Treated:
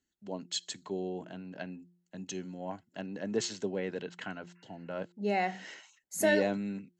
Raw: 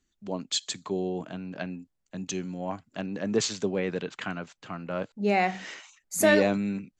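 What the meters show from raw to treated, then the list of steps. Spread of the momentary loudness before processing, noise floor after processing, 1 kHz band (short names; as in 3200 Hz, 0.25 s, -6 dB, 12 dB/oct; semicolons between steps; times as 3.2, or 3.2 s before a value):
16 LU, -79 dBFS, -6.0 dB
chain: spectral repair 4.58–4.85, 980–2800 Hz before; notch comb 1200 Hz; de-hum 175.7 Hz, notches 2; gain -5.5 dB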